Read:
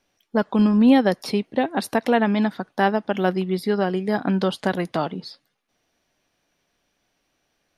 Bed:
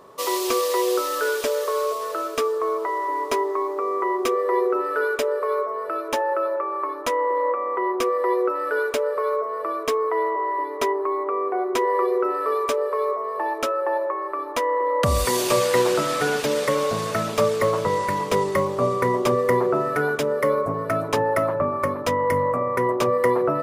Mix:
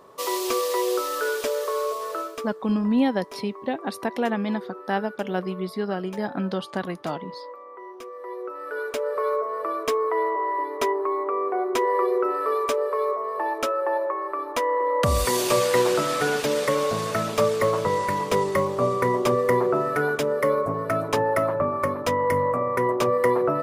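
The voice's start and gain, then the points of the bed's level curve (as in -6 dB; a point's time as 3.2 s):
2.10 s, -6.0 dB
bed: 2.2 s -2.5 dB
2.57 s -17 dB
8.09 s -17 dB
9.22 s -1 dB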